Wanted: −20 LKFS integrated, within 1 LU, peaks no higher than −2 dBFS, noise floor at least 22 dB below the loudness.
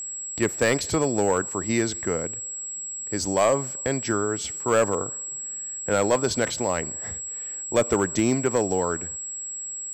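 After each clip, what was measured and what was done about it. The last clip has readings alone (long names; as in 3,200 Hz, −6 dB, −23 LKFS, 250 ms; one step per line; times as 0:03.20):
share of clipped samples 0.5%; peaks flattened at −13.0 dBFS; interfering tone 7,700 Hz; level of the tone −31 dBFS; integrated loudness −25.0 LKFS; sample peak −13.0 dBFS; target loudness −20.0 LKFS
→ clipped peaks rebuilt −13 dBFS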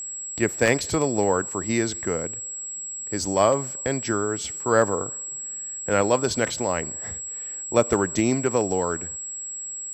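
share of clipped samples 0.0%; interfering tone 7,700 Hz; level of the tone −31 dBFS
→ notch filter 7,700 Hz, Q 30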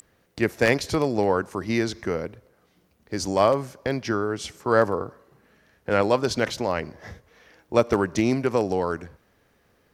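interfering tone none found; integrated loudness −24.5 LKFS; sample peak −4.5 dBFS; target loudness −20.0 LKFS
→ level +4.5 dB
brickwall limiter −2 dBFS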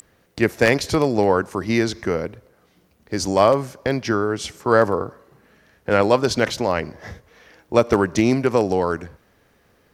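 integrated loudness −20.0 LKFS; sample peak −2.0 dBFS; background noise floor −60 dBFS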